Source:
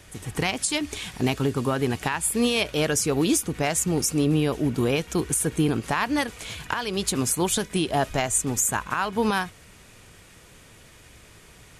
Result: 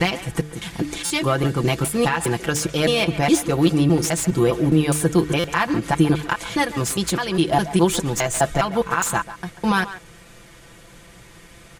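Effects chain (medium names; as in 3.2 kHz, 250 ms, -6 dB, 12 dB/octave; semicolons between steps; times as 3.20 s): slices played last to first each 205 ms, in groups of 3; treble shelf 3.1 kHz -4 dB; band-stop 2.5 kHz, Q 28; comb 5.9 ms, depth 71%; de-hum 150.8 Hz, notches 3; speakerphone echo 140 ms, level -13 dB; buffer glitch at 1.05/5.39 s, samples 256, times 8; slew-rate limiter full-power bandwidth 380 Hz; trim +4 dB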